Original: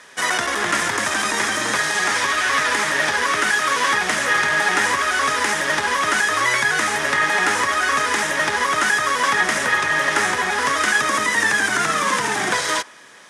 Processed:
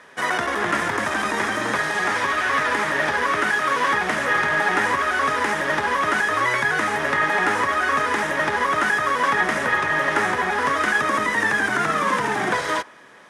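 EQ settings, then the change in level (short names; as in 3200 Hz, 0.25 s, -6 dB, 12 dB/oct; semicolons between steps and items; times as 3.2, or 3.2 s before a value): bell 7400 Hz -13.5 dB 2.6 oct; +1.5 dB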